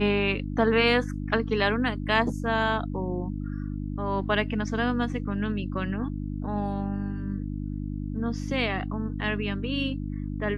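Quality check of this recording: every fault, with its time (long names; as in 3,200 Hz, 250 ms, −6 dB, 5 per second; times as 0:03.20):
mains hum 50 Hz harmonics 6 −32 dBFS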